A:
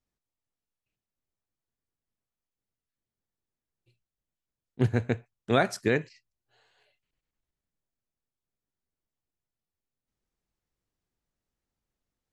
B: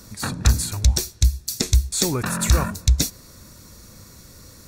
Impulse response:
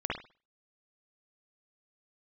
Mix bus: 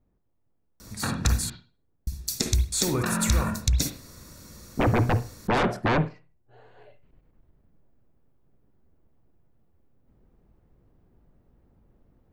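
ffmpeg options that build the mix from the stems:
-filter_complex "[0:a]tiltshelf=f=1.1k:g=9,aeval=exprs='0.668*sin(PI/2*10*val(0)/0.668)':c=same,equalizer=f=6.8k:t=o:w=2.2:g=-13,volume=-6dB,afade=t=in:st=6.45:d=0.7:silence=0.375837,asplit=2[a][b];[b]volume=-19dB[c];[1:a]acompressor=threshold=-18dB:ratio=3,adelay=800,volume=-5.5dB,asplit=3[d][e][f];[d]atrim=end=1.5,asetpts=PTS-STARTPTS,afade=t=out:st=1.496:d=0.004:c=hsin[g];[e]atrim=start=1.5:end=2.07,asetpts=PTS-STARTPTS,volume=0[h];[f]atrim=start=2.07,asetpts=PTS-STARTPTS,afade=t=in:d=0.004:c=hsin[i];[g][h][i]concat=n=3:v=0:a=1,asplit=2[j][k];[k]volume=-6.5dB[l];[2:a]atrim=start_sample=2205[m];[c][l]amix=inputs=2:normalize=0[n];[n][m]afir=irnorm=-1:irlink=0[o];[a][j][o]amix=inputs=3:normalize=0"

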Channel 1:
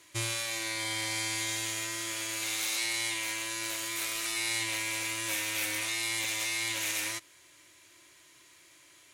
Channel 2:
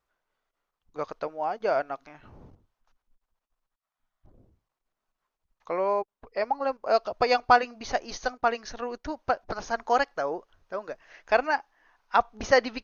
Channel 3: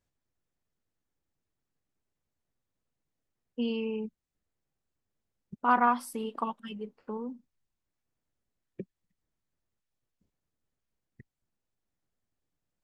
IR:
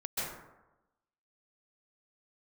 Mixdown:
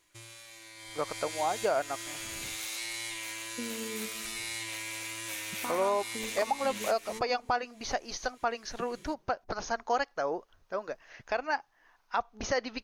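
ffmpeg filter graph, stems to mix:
-filter_complex "[0:a]acompressor=threshold=-42dB:ratio=1.5,volume=-1dB,afade=t=in:st=0.74:d=0.72:silence=0.281838[a];[1:a]highshelf=f=5.6k:g=7,volume=-1dB,asplit=2[b][c];[2:a]acompressor=threshold=-34dB:ratio=6,volume=-3.5dB,asplit=2[d][e];[e]volume=-15dB[f];[c]apad=whole_len=402966[g];[a][g]sidechaincompress=threshold=-25dB:ratio=8:attack=5.6:release=282[h];[3:a]atrim=start_sample=2205[i];[f][i]afir=irnorm=-1:irlink=0[j];[h][b][d][j]amix=inputs=4:normalize=0,alimiter=limit=-18dB:level=0:latency=1:release=344"

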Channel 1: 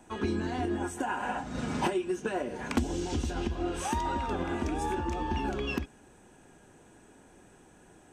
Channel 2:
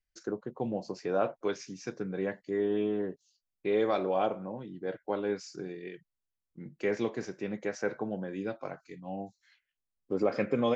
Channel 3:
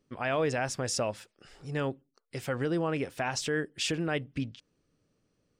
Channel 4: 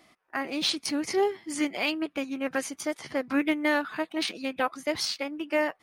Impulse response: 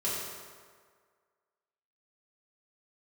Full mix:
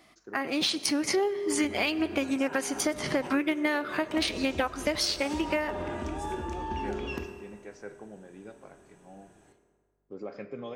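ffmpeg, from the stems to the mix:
-filter_complex "[0:a]adelay=1400,volume=-6dB,asplit=2[a][b];[b]volume=-9.5dB[c];[1:a]aeval=exprs='val(0)+0.000501*(sin(2*PI*50*n/s)+sin(2*PI*2*50*n/s)/2+sin(2*PI*3*50*n/s)/3+sin(2*PI*4*50*n/s)/4+sin(2*PI*5*50*n/s)/5)':c=same,volume=-12.5dB,asplit=2[d][e];[e]volume=-17dB[f];[2:a]acompressor=threshold=-37dB:ratio=6,adelay=1500,volume=-6dB[g];[3:a]dynaudnorm=f=280:g=5:m=12dB,volume=0dB,asplit=2[h][i];[i]volume=-22dB[j];[4:a]atrim=start_sample=2205[k];[c][f][j]amix=inputs=3:normalize=0[l];[l][k]afir=irnorm=-1:irlink=0[m];[a][d][g][h][m]amix=inputs=5:normalize=0,acompressor=threshold=-25dB:ratio=6"

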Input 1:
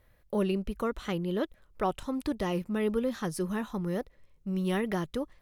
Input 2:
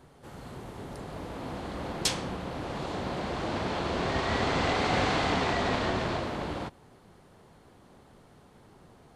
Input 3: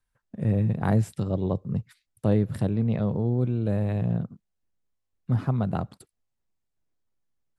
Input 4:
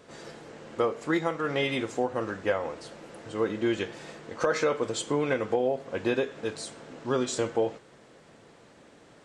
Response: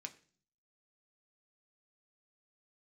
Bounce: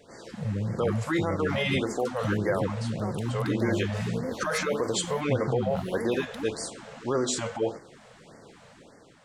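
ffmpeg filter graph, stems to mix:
-filter_complex "[0:a]highpass=220,alimiter=level_in=2dB:limit=-24dB:level=0:latency=1,volume=-2dB,adelay=1200,volume=-0.5dB[a];[1:a]acompressor=threshold=-36dB:ratio=6,volume=-12.5dB[b];[2:a]acompressor=threshold=-45dB:ratio=1.5,volume=2.5dB[c];[3:a]bandreject=f=50:t=h:w=6,bandreject=f=100:t=h:w=6,bandreject=f=150:t=h:w=6,bandreject=f=200:t=h:w=6,bandreject=f=250:t=h:w=6,bandreject=f=300:t=h:w=6,bandreject=f=350:t=h:w=6,volume=-0.5dB[d];[b][d]amix=inputs=2:normalize=0,dynaudnorm=f=170:g=7:m=5dB,alimiter=limit=-17.5dB:level=0:latency=1:release=23,volume=0dB[e];[a][c][e]amix=inputs=3:normalize=0,afftfilt=real='re*(1-between(b*sr/1024,290*pow(3200/290,0.5+0.5*sin(2*PI*1.7*pts/sr))/1.41,290*pow(3200/290,0.5+0.5*sin(2*PI*1.7*pts/sr))*1.41))':imag='im*(1-between(b*sr/1024,290*pow(3200/290,0.5+0.5*sin(2*PI*1.7*pts/sr))/1.41,290*pow(3200/290,0.5+0.5*sin(2*PI*1.7*pts/sr))*1.41))':win_size=1024:overlap=0.75"

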